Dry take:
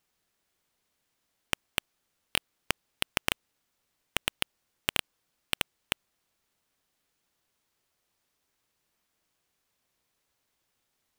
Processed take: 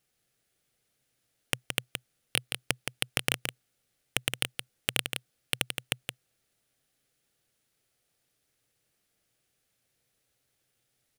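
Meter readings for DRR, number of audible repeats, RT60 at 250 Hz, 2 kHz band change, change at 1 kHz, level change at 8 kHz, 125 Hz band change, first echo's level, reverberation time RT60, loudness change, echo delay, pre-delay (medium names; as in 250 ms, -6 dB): no reverb, 1, no reverb, +0.5 dB, -3.0 dB, +3.5 dB, +6.0 dB, -6.5 dB, no reverb, +0.5 dB, 170 ms, no reverb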